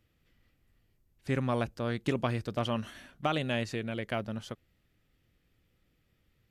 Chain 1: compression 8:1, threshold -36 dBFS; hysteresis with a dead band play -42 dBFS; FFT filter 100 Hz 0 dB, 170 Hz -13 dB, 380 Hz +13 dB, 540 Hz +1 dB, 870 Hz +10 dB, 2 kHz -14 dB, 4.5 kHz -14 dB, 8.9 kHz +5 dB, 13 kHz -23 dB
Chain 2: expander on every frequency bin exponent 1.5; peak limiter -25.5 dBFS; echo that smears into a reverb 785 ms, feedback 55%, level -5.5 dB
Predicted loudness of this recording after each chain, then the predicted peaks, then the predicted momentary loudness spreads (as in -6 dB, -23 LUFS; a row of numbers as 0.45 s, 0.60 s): -39.5 LUFS, -37.5 LUFS; -17.5 dBFS, -22.5 dBFS; 8 LU, 14 LU